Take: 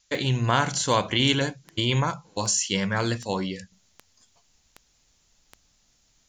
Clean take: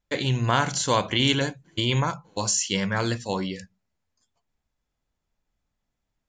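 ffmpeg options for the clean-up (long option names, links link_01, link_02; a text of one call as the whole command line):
ffmpeg -i in.wav -af "adeclick=threshold=4,agate=range=-21dB:threshold=-57dB,asetnsamples=nb_out_samples=441:pad=0,asendcmd='3.72 volume volume -10.5dB',volume=0dB" out.wav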